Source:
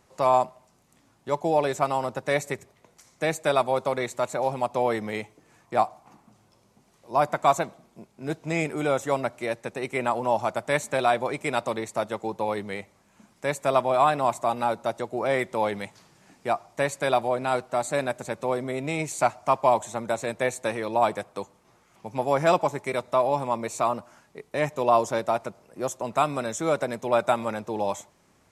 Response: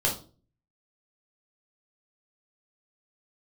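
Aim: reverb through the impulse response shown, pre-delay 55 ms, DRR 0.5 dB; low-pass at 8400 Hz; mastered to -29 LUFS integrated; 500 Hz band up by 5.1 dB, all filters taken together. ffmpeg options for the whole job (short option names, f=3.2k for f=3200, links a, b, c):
-filter_complex "[0:a]lowpass=8.4k,equalizer=f=500:t=o:g=6.5,asplit=2[a][b];[1:a]atrim=start_sample=2205,adelay=55[c];[b][c]afir=irnorm=-1:irlink=0,volume=-10.5dB[d];[a][d]amix=inputs=2:normalize=0,volume=-10dB"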